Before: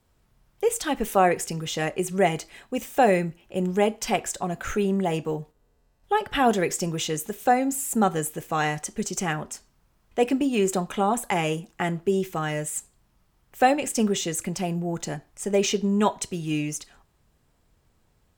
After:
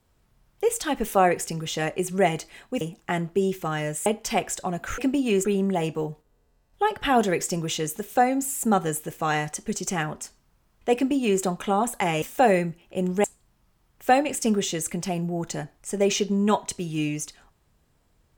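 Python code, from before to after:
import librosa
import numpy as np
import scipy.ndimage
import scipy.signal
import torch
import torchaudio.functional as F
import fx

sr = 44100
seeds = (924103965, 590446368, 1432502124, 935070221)

y = fx.edit(x, sr, fx.swap(start_s=2.81, length_s=1.02, other_s=11.52, other_length_s=1.25),
    fx.duplicate(start_s=10.25, length_s=0.47, to_s=4.75), tone=tone)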